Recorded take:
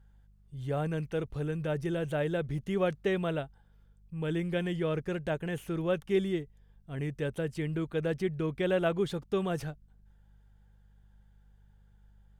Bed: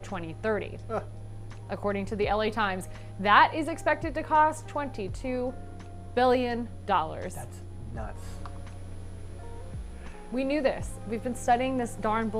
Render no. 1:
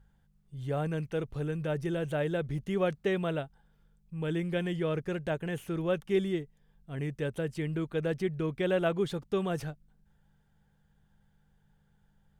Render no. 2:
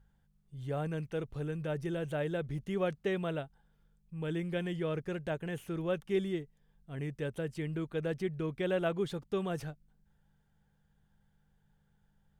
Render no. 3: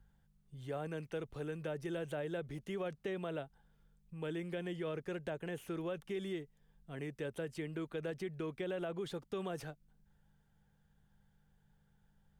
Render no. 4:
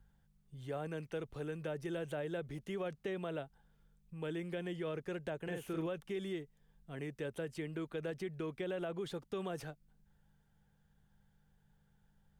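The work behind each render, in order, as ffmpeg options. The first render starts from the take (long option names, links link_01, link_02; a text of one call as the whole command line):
ffmpeg -i in.wav -af "bandreject=frequency=50:width_type=h:width=4,bandreject=frequency=100:width_type=h:width=4" out.wav
ffmpeg -i in.wav -af "volume=-3.5dB" out.wav
ffmpeg -i in.wav -filter_complex "[0:a]alimiter=level_in=3.5dB:limit=-24dB:level=0:latency=1:release=39,volume=-3.5dB,acrossover=split=240|860[link_01][link_02][link_03];[link_01]acompressor=threshold=-51dB:ratio=4[link_04];[link_02]acompressor=threshold=-38dB:ratio=4[link_05];[link_03]acompressor=threshold=-47dB:ratio=4[link_06];[link_04][link_05][link_06]amix=inputs=3:normalize=0" out.wav
ffmpeg -i in.wav -filter_complex "[0:a]asettb=1/sr,asplit=3[link_01][link_02][link_03];[link_01]atrim=end=5.434[link_04];[link_02]atrim=start=5.43:end=5.87,asetpts=PTS-STARTPTS,afade=type=in:duration=0.004:curve=qsin,afade=type=out:start_time=0.436:duration=0.004:curve=qsin,asplit=2[link_05][link_06];[link_06]adelay=44,volume=-4.5dB[link_07];[link_05][link_07]amix=inputs=2:normalize=0,atrim=end_sample=19404[link_08];[link_03]atrim=start=5.866[link_09];[link_04][link_08]acrossfade=duration=0.004:curve1=hsin:curve2=qsin[link_10];[link_10][link_09]acrossfade=duration=0.004:curve1=qsin:curve2=hsin" out.wav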